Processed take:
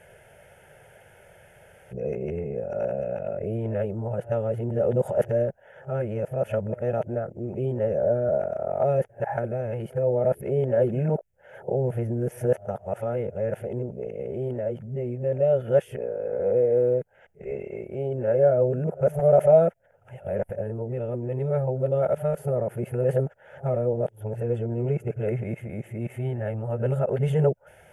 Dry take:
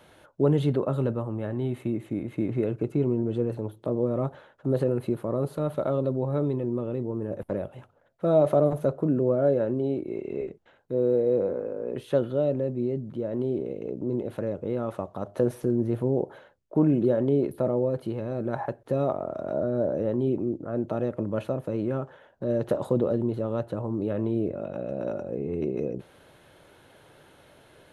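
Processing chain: reverse the whole clip; static phaser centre 1.1 kHz, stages 6; trim +5 dB

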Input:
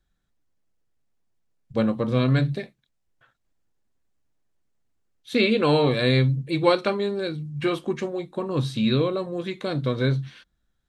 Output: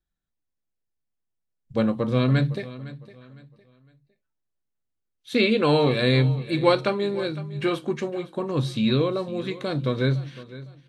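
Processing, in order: feedback delay 508 ms, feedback 31%, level -17 dB; spectral noise reduction 11 dB

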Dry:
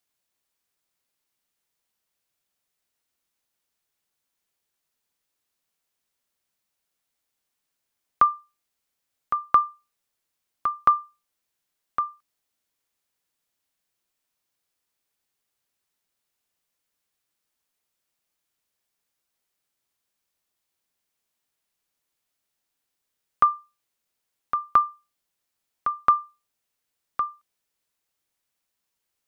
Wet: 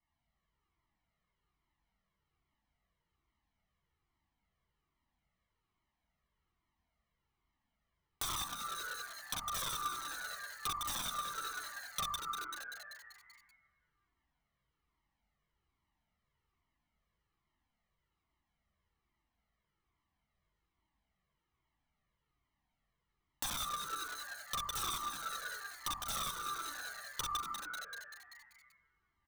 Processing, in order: low-pass 2.2 kHz 12 dB/octave; comb 1 ms, depth 79%; two-slope reverb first 0.93 s, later 2.5 s, from -24 dB, DRR -5.5 dB; integer overflow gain 17 dB; bass shelf 230 Hz +10 dB; on a send: frequency-shifting echo 193 ms, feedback 58%, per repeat +140 Hz, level -9 dB; on the sum: compression 6:1, threshold -30 dBFS, peak gain reduction 11.5 dB; Shepard-style flanger falling 1.2 Hz; trim -3 dB

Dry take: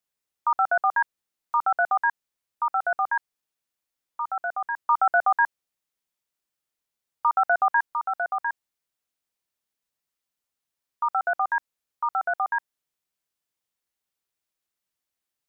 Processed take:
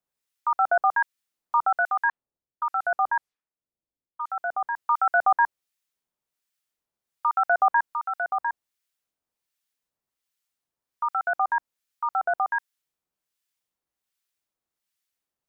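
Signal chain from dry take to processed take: 2.09–4.30 s: level-controlled noise filter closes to 400 Hz, open at -25 dBFS; harmonic tremolo 1.3 Hz, depth 70%, crossover 1.3 kHz; trim +3.5 dB

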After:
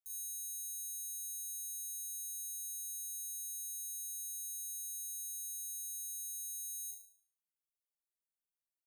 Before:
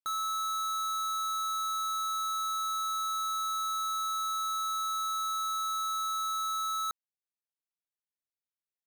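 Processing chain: inverse Chebyshev band-stop 240–1600 Hz, stop band 80 dB; flutter echo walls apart 6.2 m, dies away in 0.54 s; trim -2.5 dB

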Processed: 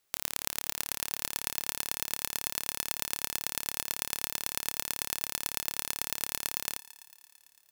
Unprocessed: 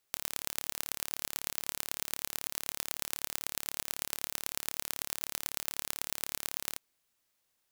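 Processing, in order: thinning echo 112 ms, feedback 80%, high-pass 380 Hz, level -19 dB; trim +3 dB

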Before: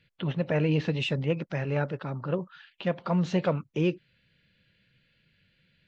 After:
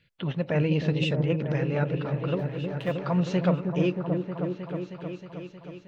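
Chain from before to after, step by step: 2.39–2.94 s: companding laws mixed up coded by A; on a send: delay with an opening low-pass 314 ms, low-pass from 400 Hz, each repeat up 1 oct, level -3 dB

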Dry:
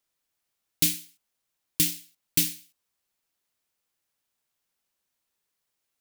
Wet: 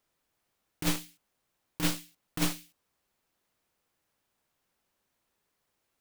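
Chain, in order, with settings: tracing distortion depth 0.24 ms; treble shelf 2.1 kHz -10.5 dB; compressor with a negative ratio -32 dBFS, ratio -0.5; trim +6 dB

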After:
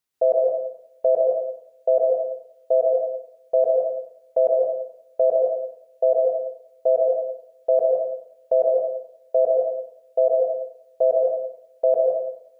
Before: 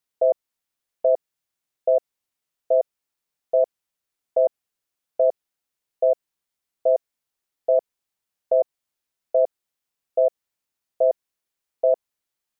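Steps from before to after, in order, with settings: plate-style reverb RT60 0.78 s, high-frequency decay 0.8×, pre-delay 110 ms, DRR -3 dB

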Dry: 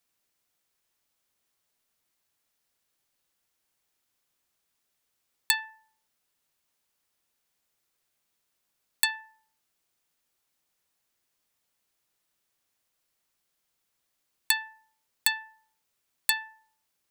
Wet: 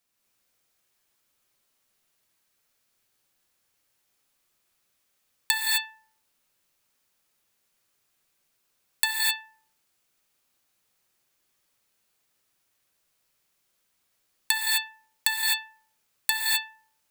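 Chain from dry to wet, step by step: gated-style reverb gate 280 ms rising, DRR -3.5 dB

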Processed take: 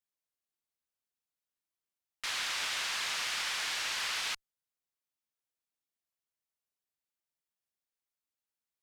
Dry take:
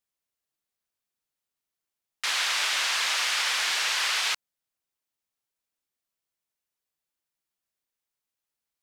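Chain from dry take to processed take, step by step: single-diode clipper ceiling -20.5 dBFS; trim -7 dB

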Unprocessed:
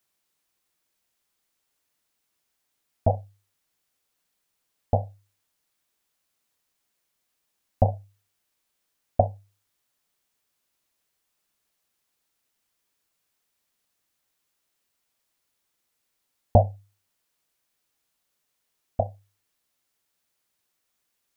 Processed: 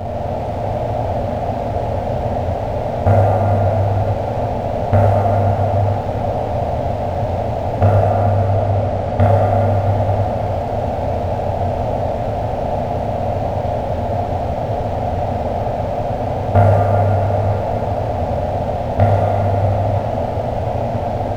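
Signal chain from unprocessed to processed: spectral levelling over time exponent 0.2; 7.83–9.21 s: low-pass 1.1 kHz 12 dB/octave; waveshaping leveller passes 2; reverberation RT60 4.6 s, pre-delay 7 ms, DRR -6.5 dB; trim -6.5 dB

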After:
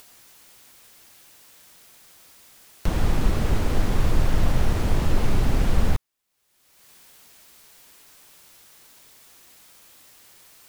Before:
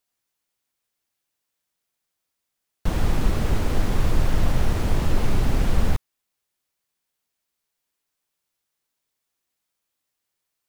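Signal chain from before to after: upward compressor, threshold -28 dBFS

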